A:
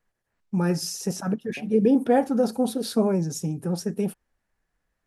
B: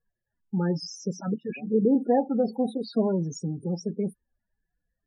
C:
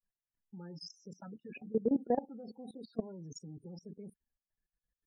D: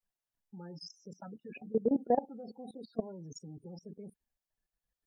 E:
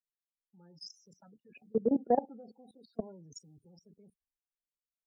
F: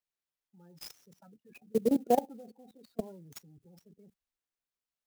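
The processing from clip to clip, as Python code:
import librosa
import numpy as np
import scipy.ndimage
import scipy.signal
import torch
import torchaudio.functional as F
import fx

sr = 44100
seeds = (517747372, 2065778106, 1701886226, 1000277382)

y1 = fx.spec_topn(x, sr, count=16)
y1 = y1 * librosa.db_to_amplitude(-2.5)
y2 = fx.level_steps(y1, sr, step_db=20)
y2 = y2 * librosa.db_to_amplitude(-6.5)
y3 = fx.peak_eq(y2, sr, hz=710.0, db=5.5, octaves=0.99)
y4 = fx.band_widen(y3, sr, depth_pct=70)
y4 = y4 * librosa.db_to_amplitude(-5.0)
y5 = fx.clock_jitter(y4, sr, seeds[0], jitter_ms=0.027)
y5 = y5 * librosa.db_to_amplitude(1.5)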